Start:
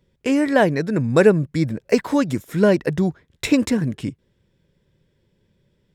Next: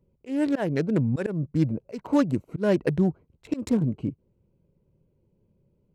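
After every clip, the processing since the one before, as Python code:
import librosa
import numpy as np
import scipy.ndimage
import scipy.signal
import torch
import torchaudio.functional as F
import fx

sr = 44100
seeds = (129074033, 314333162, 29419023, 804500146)

y = fx.wiener(x, sr, points=25)
y = fx.auto_swell(y, sr, attack_ms=211.0)
y = fx.wow_flutter(y, sr, seeds[0], rate_hz=2.1, depth_cents=25.0)
y = y * 10.0 ** (-2.0 / 20.0)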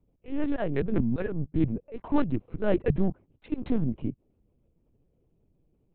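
y = fx.lpc_vocoder(x, sr, seeds[1], excitation='pitch_kept', order=10)
y = y * 10.0 ** (-1.5 / 20.0)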